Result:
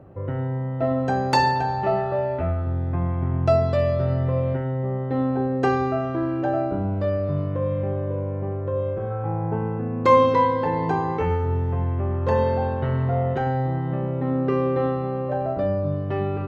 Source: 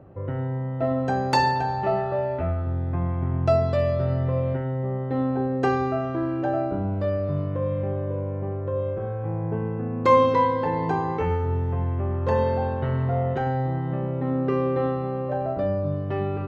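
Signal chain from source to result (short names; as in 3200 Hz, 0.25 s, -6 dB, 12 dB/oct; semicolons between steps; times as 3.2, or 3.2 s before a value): 9.1–9.78 small resonant body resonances 850/1300 Hz, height 14 dB -> 10 dB; gain +1.5 dB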